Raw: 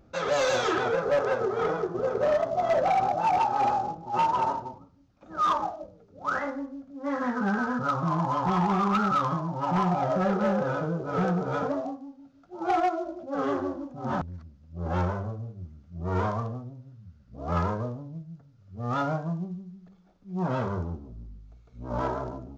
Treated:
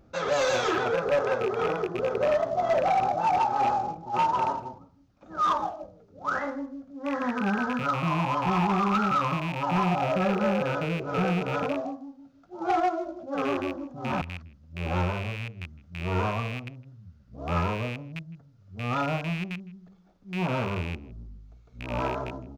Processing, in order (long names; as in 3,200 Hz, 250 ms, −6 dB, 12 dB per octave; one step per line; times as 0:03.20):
loose part that buzzes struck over −35 dBFS, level −25 dBFS
far-end echo of a speakerphone 160 ms, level −23 dB